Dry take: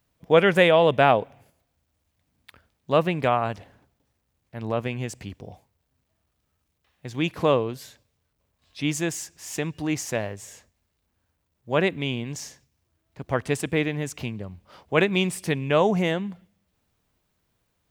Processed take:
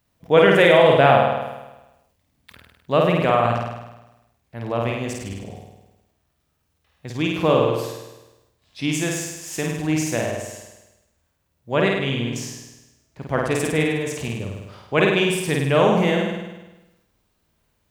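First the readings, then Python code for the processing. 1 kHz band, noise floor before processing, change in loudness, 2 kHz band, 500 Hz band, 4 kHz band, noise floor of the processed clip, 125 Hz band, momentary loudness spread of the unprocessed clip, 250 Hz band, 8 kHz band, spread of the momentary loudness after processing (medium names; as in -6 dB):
+4.5 dB, -75 dBFS, +4.0 dB, +4.5 dB, +4.5 dB, +4.0 dB, -70 dBFS, +4.5 dB, 21 LU, +4.0 dB, +4.5 dB, 20 LU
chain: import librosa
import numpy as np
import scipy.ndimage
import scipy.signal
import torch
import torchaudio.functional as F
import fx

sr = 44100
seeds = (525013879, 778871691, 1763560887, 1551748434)

y = fx.room_flutter(x, sr, wall_m=8.8, rt60_s=1.0)
y = fx.sustainer(y, sr, db_per_s=56.0)
y = y * 10.0 ** (1.0 / 20.0)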